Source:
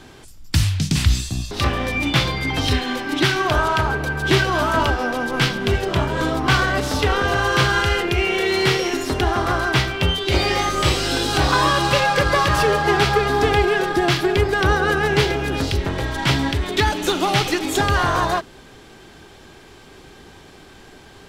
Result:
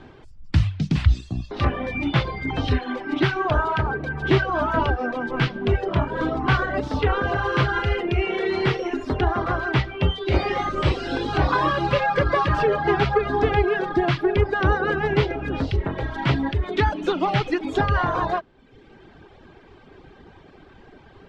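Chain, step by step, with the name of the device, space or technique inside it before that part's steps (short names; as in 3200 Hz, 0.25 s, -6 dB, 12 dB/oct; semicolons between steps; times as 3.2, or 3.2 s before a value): phone in a pocket (LPF 3600 Hz 12 dB/oct; high shelf 2100 Hz -9 dB); reverb removal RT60 0.93 s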